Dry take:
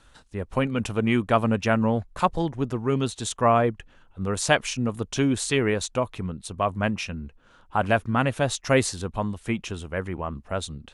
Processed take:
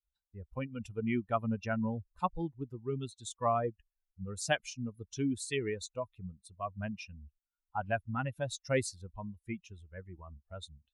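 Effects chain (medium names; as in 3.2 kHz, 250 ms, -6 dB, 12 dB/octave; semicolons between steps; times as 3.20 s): expander on every frequency bin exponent 2; trim -7.5 dB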